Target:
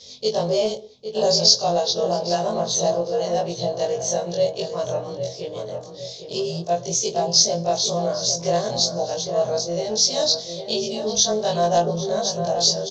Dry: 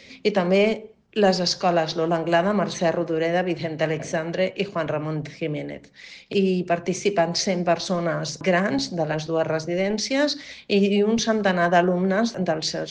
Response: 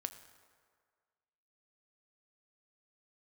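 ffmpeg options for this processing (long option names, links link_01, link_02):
-filter_complex "[0:a]afftfilt=real='re':imag='-im':win_size=2048:overlap=0.75,highpass=49,asoftclip=type=tanh:threshold=-12.5dB,firequalizer=gain_entry='entry(120,0);entry(290,-16);entry(420,0);entry(640,1);entry(920,-2);entry(1400,-13);entry(2300,-18);entry(3400,6);entry(6400,13);entry(9200,-9)':delay=0.05:min_phase=1,asplit=2[link_01][link_02];[link_02]adelay=805,lowpass=frequency=1900:poles=1,volume=-8dB,asplit=2[link_03][link_04];[link_04]adelay=805,lowpass=frequency=1900:poles=1,volume=0.45,asplit=2[link_05][link_06];[link_06]adelay=805,lowpass=frequency=1900:poles=1,volume=0.45,asplit=2[link_07][link_08];[link_08]adelay=805,lowpass=frequency=1900:poles=1,volume=0.45,asplit=2[link_09][link_10];[link_10]adelay=805,lowpass=frequency=1900:poles=1,volume=0.45[link_11];[link_01][link_03][link_05][link_07][link_09][link_11]amix=inputs=6:normalize=0,volume=4.5dB"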